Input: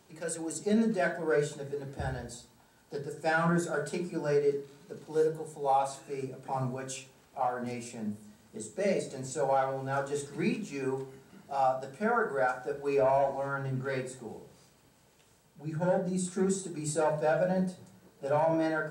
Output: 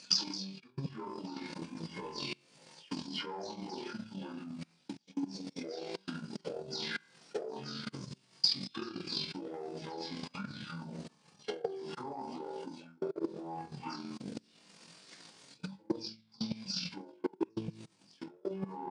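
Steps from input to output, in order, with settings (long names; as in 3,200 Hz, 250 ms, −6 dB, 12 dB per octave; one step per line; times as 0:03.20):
every frequency bin delayed by itself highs early, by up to 174 ms
flutter between parallel walls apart 3.7 metres, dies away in 0.41 s
output level in coarse steps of 22 dB
low shelf with overshoot 200 Hz −11.5 dB, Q 3
pitch shifter −9 semitones
low-pass filter 8,200 Hz 12 dB per octave
reversed playback
downward compressor 12 to 1, threshold −44 dBFS, peak gain reduction 27.5 dB
reversed playback
transient designer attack +10 dB, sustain −6 dB
spectral tilt +3 dB per octave
level +8.5 dB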